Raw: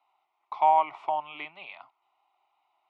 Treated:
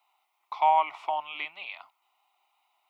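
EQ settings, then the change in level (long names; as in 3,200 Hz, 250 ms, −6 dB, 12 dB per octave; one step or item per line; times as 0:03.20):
spectral tilt +3.5 dB per octave
0.0 dB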